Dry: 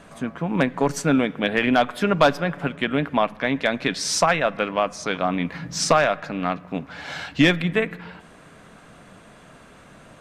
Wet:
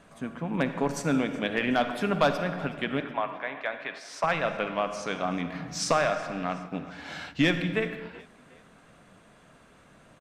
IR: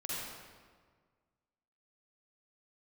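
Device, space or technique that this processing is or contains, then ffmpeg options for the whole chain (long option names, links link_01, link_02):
keyed gated reverb: -filter_complex "[0:a]asettb=1/sr,asplit=3[link_01][link_02][link_03];[link_01]atrim=end=3.004[link_04];[link_02]atrim=start=3:end=4.24,asetpts=PTS-STARTPTS,afade=type=in:duration=0.004:curve=qsin,afade=type=out:start_time=1.236:duration=0.004:curve=qsin,acrossover=split=530 2600:gain=0.1 1 0.178[link_05][link_06][link_07];[link_05][link_06][link_07]amix=inputs=3:normalize=0[link_08];[link_03]atrim=start=4.236[link_09];[link_04][link_08]acrossfade=duration=0.004:curve1=hsin:curve2=qsin[link_10];[link_10][link_09]acrossfade=duration=0.004:curve1=qsin:curve2=hsin,asplit=4[link_11][link_12][link_13][link_14];[link_12]adelay=371,afreqshift=34,volume=-21dB[link_15];[link_13]adelay=742,afreqshift=68,volume=-28.7dB[link_16];[link_14]adelay=1113,afreqshift=102,volume=-36.5dB[link_17];[link_11][link_15][link_16][link_17]amix=inputs=4:normalize=0,asplit=3[link_18][link_19][link_20];[1:a]atrim=start_sample=2205[link_21];[link_19][link_21]afir=irnorm=-1:irlink=0[link_22];[link_20]apad=whole_len=498979[link_23];[link_22][link_23]sidechaingate=range=-33dB:threshold=-36dB:ratio=16:detection=peak,volume=-9dB[link_24];[link_18][link_24]amix=inputs=2:normalize=0,volume=-8.5dB"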